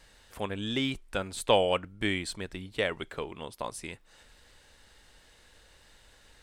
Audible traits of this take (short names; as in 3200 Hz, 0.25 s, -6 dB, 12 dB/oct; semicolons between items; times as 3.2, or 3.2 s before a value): noise floor -60 dBFS; spectral tilt -4.0 dB/oct